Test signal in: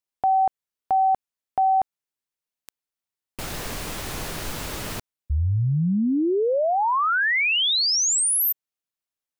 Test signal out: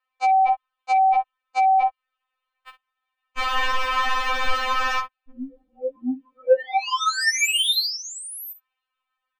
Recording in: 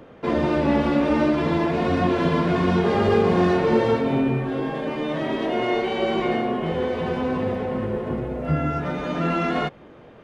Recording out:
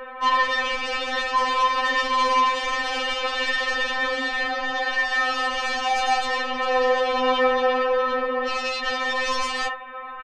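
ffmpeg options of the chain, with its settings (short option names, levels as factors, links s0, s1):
-filter_complex "[0:a]firequalizer=gain_entry='entry(140,0);entry(360,-12);entry(580,5);entry(1000,15);entry(3200,5);entry(5800,-21)':delay=0.05:min_phase=1,asplit=2[s0][s1];[s1]aecho=0:1:24|54:0.188|0.211[s2];[s0][s2]amix=inputs=2:normalize=0,acrossover=split=190[s3][s4];[s4]acompressor=threshold=0.1:ratio=3:attack=3.9:release=200:knee=2.83:detection=peak[s5];[s3][s5]amix=inputs=2:normalize=0,equalizer=f=370:w=0.43:g=-2.5,asplit=2[s6][s7];[s7]aeval=exprs='0.335*sin(PI/2*5.01*val(0)/0.335)':c=same,volume=0.447[s8];[s6][s8]amix=inputs=2:normalize=0,aecho=1:1:1.7:0.65,afftfilt=real='re*3.46*eq(mod(b,12),0)':imag='im*3.46*eq(mod(b,12),0)':win_size=2048:overlap=0.75,volume=0.531"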